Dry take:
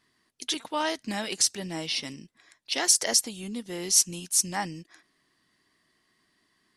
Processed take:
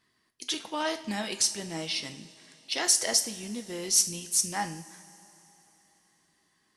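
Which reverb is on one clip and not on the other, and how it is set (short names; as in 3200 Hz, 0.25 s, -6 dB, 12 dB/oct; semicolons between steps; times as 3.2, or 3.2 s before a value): two-slope reverb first 0.44 s, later 3.7 s, from -18 dB, DRR 6.5 dB; gain -2.5 dB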